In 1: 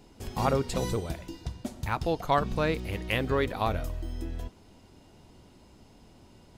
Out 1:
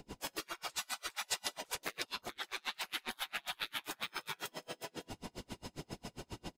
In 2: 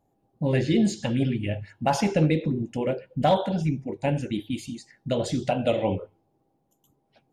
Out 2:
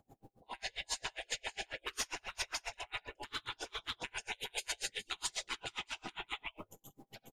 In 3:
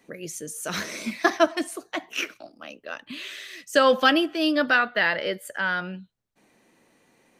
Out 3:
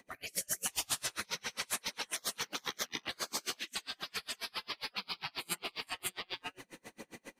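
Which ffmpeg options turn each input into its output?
-filter_complex "[0:a]aecho=1:1:47|65|69|235|417|613:0.119|0.501|0.376|0.141|0.398|0.398,acrossover=split=450|1400[a][b][c];[c]dynaudnorm=f=640:g=5:m=3dB[d];[a][b][d]amix=inputs=3:normalize=0,aphaser=in_gain=1:out_gain=1:delay=2.2:decay=0.24:speed=1.7:type=sinusoidal,areverse,acompressor=threshold=-29dB:ratio=12,areverse,afftfilt=real='re*lt(hypot(re,im),0.02)':imag='im*lt(hypot(re,im),0.02)':win_size=1024:overlap=0.75,aeval=exprs='val(0)*pow(10,-37*(0.5-0.5*cos(2*PI*7.4*n/s))/20)':c=same,volume=12.5dB"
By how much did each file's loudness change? -11.0, -15.0, -14.0 LU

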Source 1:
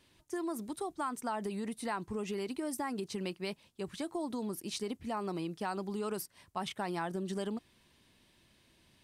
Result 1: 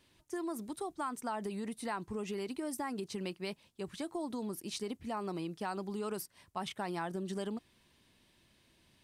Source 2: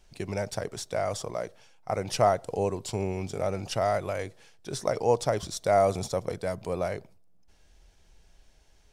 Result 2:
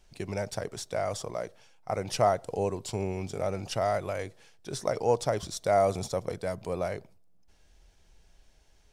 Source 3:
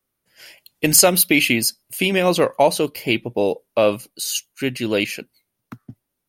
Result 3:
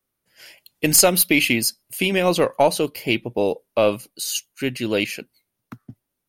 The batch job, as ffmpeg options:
-af "aeval=exprs='0.891*(cos(1*acos(clip(val(0)/0.891,-1,1)))-cos(1*PI/2))+0.0708*(cos(2*acos(clip(val(0)/0.891,-1,1)))-cos(2*PI/2))':c=same,volume=-1.5dB"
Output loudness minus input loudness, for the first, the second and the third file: -1.5, -1.5, -1.5 LU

